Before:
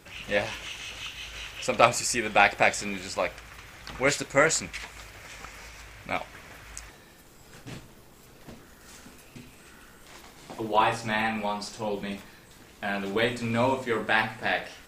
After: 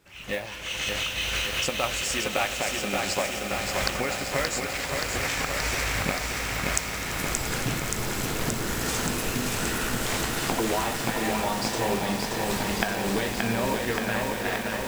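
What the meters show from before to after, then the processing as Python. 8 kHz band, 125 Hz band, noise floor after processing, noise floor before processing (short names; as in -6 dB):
+5.5 dB, +6.5 dB, -33 dBFS, -53 dBFS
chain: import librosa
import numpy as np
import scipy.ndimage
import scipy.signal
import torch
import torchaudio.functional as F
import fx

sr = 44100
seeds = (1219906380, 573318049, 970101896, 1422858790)

p1 = fx.recorder_agc(x, sr, target_db=-9.5, rise_db_per_s=41.0, max_gain_db=30)
p2 = p1 + fx.echo_swell(p1, sr, ms=85, loudest=8, wet_db=-17, dry=0)
p3 = fx.mod_noise(p2, sr, seeds[0], snr_db=19)
p4 = fx.echo_crushed(p3, sr, ms=576, feedback_pct=80, bits=5, wet_db=-3)
y = p4 * librosa.db_to_amplitude(-10.0)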